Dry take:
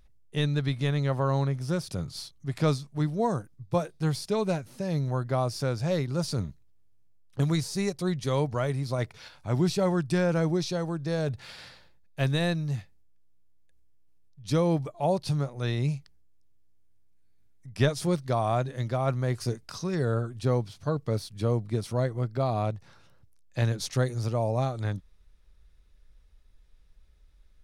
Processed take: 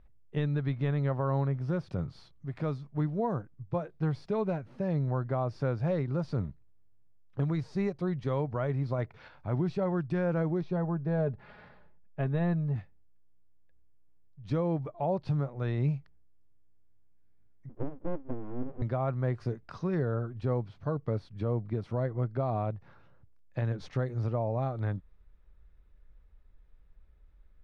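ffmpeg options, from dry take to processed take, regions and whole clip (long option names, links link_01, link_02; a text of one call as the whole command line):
ffmpeg -i in.wav -filter_complex "[0:a]asettb=1/sr,asplit=3[link_01][link_02][link_03];[link_01]atrim=end=2.114[link_04];[link_02]atrim=start=2.11:end=2.89,asetpts=PTS-STARTPTS,afade=type=in:duration=0.004:curve=qsin,afade=type=out:start_time=0.776:duration=0.004:curve=qsin,highshelf=frequency=8800:gain=6,acompressor=threshold=-41dB:ratio=1.5:attack=3.2:release=140:knee=1:detection=peak[link_05];[link_03]atrim=start=2.886[link_06];[link_04][link_05]acrossfade=duration=0.004:curve1=hsin:curve2=qsin[link_07];[link_07][link_06]acrossfade=duration=0.004:curve1=qsin:curve2=hsin,asettb=1/sr,asplit=3[link_08][link_09][link_10];[link_08]atrim=end=10.614[link_11];[link_09]atrim=start=10.61:end=12.76,asetpts=PTS-STARTPTS,afade=type=in:duration=0.004:curve=qsin,afade=type=out:start_time=2.146:duration=0.004:curve=qsin,lowpass=frequency=1300:poles=1,aecho=1:1:4.8:0.45,atrim=end_sample=94815[link_12];[link_10]atrim=start=12.756[link_13];[link_11][link_12]acrossfade=duration=0.004:curve1=hsin:curve2=qsin[link_14];[link_14][link_13]acrossfade=duration=0.004:curve1=qsin:curve2=hsin,asettb=1/sr,asplit=3[link_15][link_16][link_17];[link_15]atrim=end=17.694[link_18];[link_16]atrim=start=17.69:end=18.82,asetpts=PTS-STARTPTS,afade=type=in:duration=0.004:curve=qsin,afade=type=out:start_time=1.126:duration=0.004:curve=qsin,asuperpass=centerf=210:order=8:qfactor=0.76,aeval=exprs='abs(val(0))':channel_layout=same[link_19];[link_17]atrim=start=18.816[link_20];[link_18][link_19]acrossfade=duration=0.004:curve1=hsin:curve2=qsin[link_21];[link_21][link_20]acrossfade=duration=0.004:curve1=qsin:curve2=hsin,lowpass=1800,alimiter=limit=-21.5dB:level=0:latency=1:release=226" out.wav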